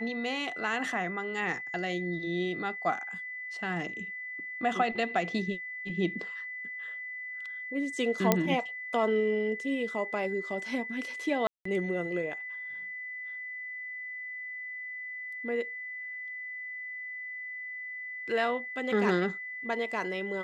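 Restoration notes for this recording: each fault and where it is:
tone 2000 Hz -37 dBFS
8.32 pop -7 dBFS
11.47–11.65 gap 0.184 s

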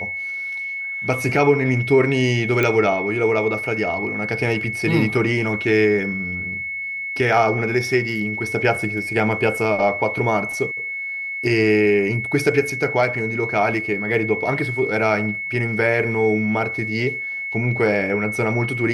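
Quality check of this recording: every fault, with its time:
tone 2200 Hz -25 dBFS
2.63 pop -7 dBFS

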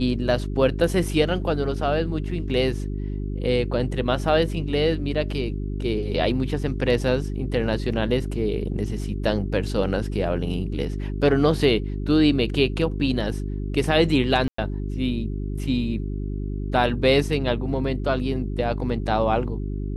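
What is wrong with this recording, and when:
hum 50 Hz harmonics 8 -28 dBFS
14.48–14.58 gap 0.104 s

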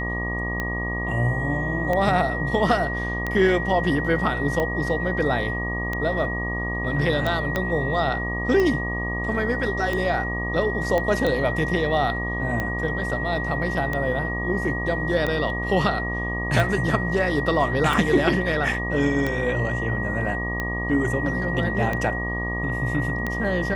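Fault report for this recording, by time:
buzz 60 Hz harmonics 20 -29 dBFS
tick 45 rpm -13 dBFS
tone 1900 Hz -28 dBFS
7.56 pop -10 dBFS
10.98 pop -12 dBFS

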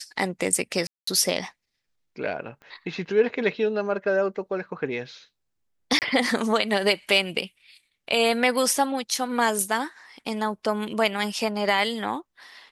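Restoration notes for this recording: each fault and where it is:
0.87–1.07 gap 0.204 s
2.62 pop -33 dBFS
5.99–6.02 gap 28 ms

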